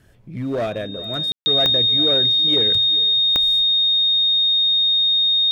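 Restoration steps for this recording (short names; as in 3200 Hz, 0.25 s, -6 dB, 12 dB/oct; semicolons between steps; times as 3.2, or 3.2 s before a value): de-click; notch 3700 Hz, Q 30; room tone fill 1.32–1.46; inverse comb 0.409 s -17.5 dB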